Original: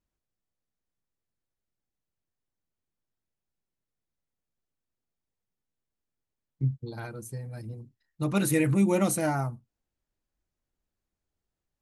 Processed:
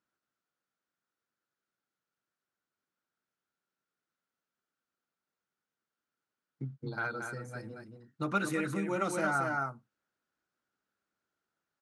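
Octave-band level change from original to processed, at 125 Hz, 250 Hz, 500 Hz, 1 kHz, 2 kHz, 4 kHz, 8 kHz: -11.0 dB, -9.0 dB, -5.5 dB, +1.5 dB, +3.0 dB, -5.5 dB, -11.5 dB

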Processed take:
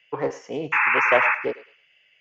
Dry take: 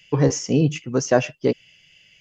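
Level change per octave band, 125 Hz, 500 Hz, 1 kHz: -20.5 dB, -4.0 dB, +8.0 dB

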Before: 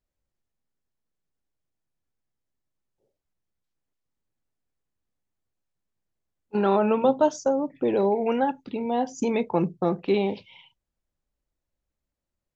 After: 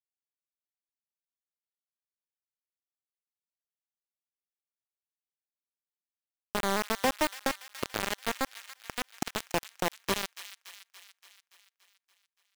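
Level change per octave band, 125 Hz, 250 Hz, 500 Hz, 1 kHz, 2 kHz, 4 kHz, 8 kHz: -10.5 dB, -12.5 dB, -13.0 dB, -6.5 dB, +4.5 dB, +7.0 dB, no reading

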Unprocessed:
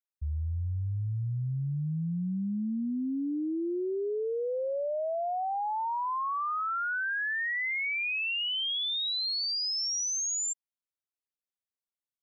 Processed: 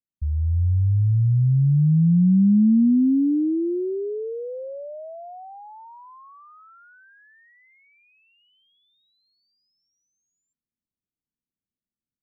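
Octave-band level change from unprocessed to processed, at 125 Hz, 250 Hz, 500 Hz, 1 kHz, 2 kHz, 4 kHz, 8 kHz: +13.5 dB, +14.0 dB, +2.0 dB, -11.5 dB, under -20 dB, under -35 dB, no reading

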